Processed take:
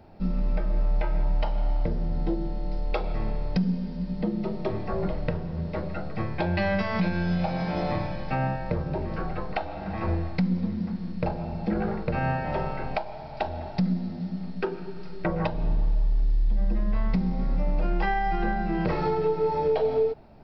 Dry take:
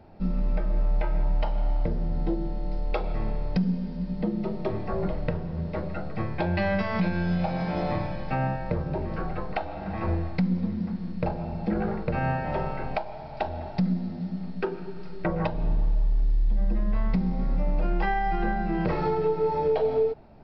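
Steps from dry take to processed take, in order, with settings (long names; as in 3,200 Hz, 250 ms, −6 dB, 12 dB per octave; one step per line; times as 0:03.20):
high-shelf EQ 4,600 Hz +6 dB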